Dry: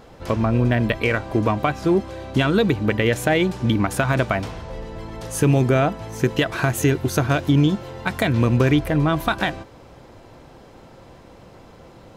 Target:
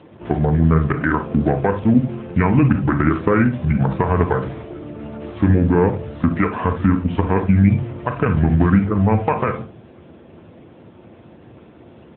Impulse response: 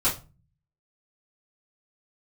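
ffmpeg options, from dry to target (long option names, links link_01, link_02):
-filter_complex "[0:a]asetrate=29433,aresample=44100,atempo=1.49831,acrossover=split=3000[link_01][link_02];[link_02]acompressor=threshold=-53dB:ratio=4:attack=1:release=60[link_03];[link_01][link_03]amix=inputs=2:normalize=0,asplit=2[link_04][link_05];[1:a]atrim=start_sample=2205,adelay=32[link_06];[link_05][link_06]afir=irnorm=-1:irlink=0,volume=-19.5dB[link_07];[link_04][link_07]amix=inputs=2:normalize=0,volume=3dB" -ar 8000 -c:a libopencore_amrnb -b:a 10200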